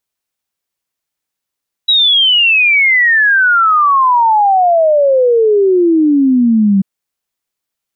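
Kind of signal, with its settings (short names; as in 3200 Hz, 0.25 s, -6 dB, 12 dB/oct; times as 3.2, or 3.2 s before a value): log sweep 3900 Hz -> 190 Hz 4.94 s -6.5 dBFS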